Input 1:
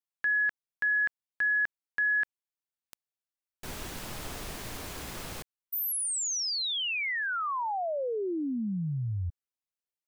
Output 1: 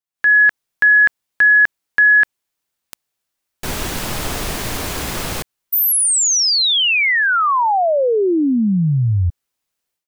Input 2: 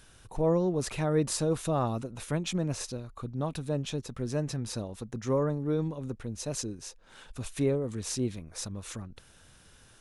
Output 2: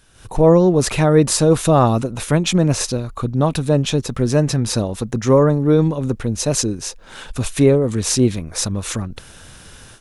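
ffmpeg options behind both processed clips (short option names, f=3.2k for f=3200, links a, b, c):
-af "dynaudnorm=f=140:g=3:m=15dB,volume=1dB"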